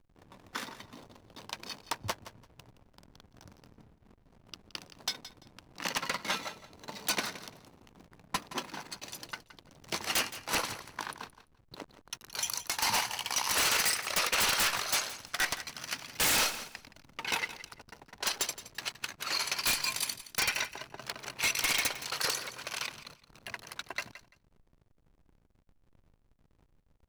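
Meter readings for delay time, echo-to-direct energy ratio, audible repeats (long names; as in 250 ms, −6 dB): 170 ms, −14.5 dB, 2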